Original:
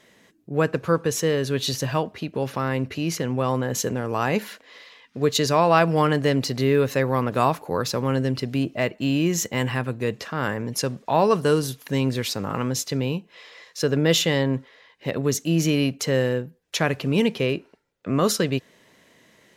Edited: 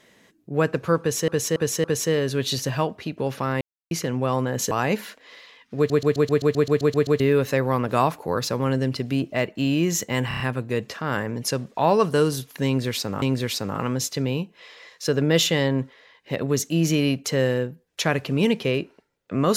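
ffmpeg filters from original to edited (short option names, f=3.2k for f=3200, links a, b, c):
-filter_complex "[0:a]asplit=23[a][b][c][d][e][f][g][h][i][j][k][l][m][n][o][p][q][r][s][t][u][v][w];[a]atrim=end=1.282[x];[b]atrim=start=0.998:end=1.282[y];[c]atrim=start=0.998:end=1.282[z];[d]atrim=start=0.998:end=2.77,asetpts=PTS-STARTPTS,afade=t=out:st=1.768:d=0.004:c=hsin[aa];[e]atrim=start=2.77:end=3.07,asetpts=PTS-STARTPTS,volume=0[ab];[f]atrim=start=3.07:end=3.872,asetpts=PTS-STARTPTS,afade=t=in:d=0.004:c=hsin[ac];[g]atrim=start=4.138:end=5.332[ad];[h]atrim=start=5.198:end=5.332[ae];[i]atrim=start=5.198:end=5.332[af];[j]atrim=start=5.198:end=5.332[ag];[k]atrim=start=5.198:end=5.332[ah];[l]atrim=start=5.198:end=5.332[ai];[m]atrim=start=5.198:end=5.332[aj];[n]atrim=start=5.198:end=5.332[ak];[o]atrim=start=5.198:end=5.332[al];[p]atrim=start=5.198:end=5.332[am];[q]atrim=start=5.198:end=5.332[an];[r]atrim=start=6.628:end=9.742[ao];[s]atrim=start=9.708:end=9.742[ap];[t]atrim=start=9.708:end=9.742[aq];[u]atrim=start=9.708:end=9.742[ar];[v]atrim=start=9.708:end=12.532[as];[w]atrim=start=11.968[at];[x][y]acrossfade=d=0.004:c1=hsin:c2=hsin[au];[au][z]acrossfade=d=0.004:c1=hsin:c2=hsin[av];[aa][ab][ac]concat=n=3:v=0:a=1[aw];[av][aw]acrossfade=d=0.004:c1=hsin:c2=hsin[ax];[ax][ad]acrossfade=d=0.004:c1=hsin:c2=hsin[ay];[ay][ae]acrossfade=d=0.004:c1=hsin:c2=hsin[az];[az][af]acrossfade=d=0.004:c1=hsin:c2=hsin[ba];[ba][ag]acrossfade=d=0.004:c1=hsin:c2=hsin[bb];[bb][ah]acrossfade=d=0.004:c1=hsin:c2=hsin[bc];[bc][ai]acrossfade=d=0.004:c1=hsin:c2=hsin[bd];[bd][aj]acrossfade=d=0.004:c1=hsin:c2=hsin[be];[be][ak]acrossfade=d=0.004:c1=hsin:c2=hsin[bf];[bf][al]acrossfade=d=0.004:c1=hsin:c2=hsin[bg];[bg][am]acrossfade=d=0.004:c1=hsin:c2=hsin[bh];[bh][an]acrossfade=d=0.004:c1=hsin:c2=hsin[bi];[bi][ao]acrossfade=d=0.004:c1=hsin:c2=hsin[bj];[bj][ap]acrossfade=d=0.004:c1=hsin:c2=hsin[bk];[bk][aq]acrossfade=d=0.004:c1=hsin:c2=hsin[bl];[bl][ar]acrossfade=d=0.004:c1=hsin:c2=hsin[bm];[bm][as]acrossfade=d=0.004:c1=hsin:c2=hsin[bn];[bn][at]acrossfade=d=0.004:c1=hsin:c2=hsin"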